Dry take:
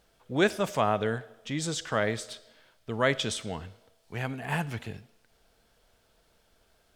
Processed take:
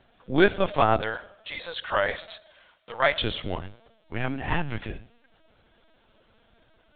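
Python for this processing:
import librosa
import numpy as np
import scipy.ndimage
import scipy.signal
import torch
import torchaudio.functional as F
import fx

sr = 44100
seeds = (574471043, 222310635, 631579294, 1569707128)

y = fx.highpass(x, sr, hz=560.0, slope=24, at=(1.01, 3.22))
y = fx.vibrato(y, sr, rate_hz=1.4, depth_cents=79.0)
y = fx.lpc_vocoder(y, sr, seeds[0], excitation='pitch_kept', order=16)
y = F.gain(torch.from_numpy(y), 5.0).numpy()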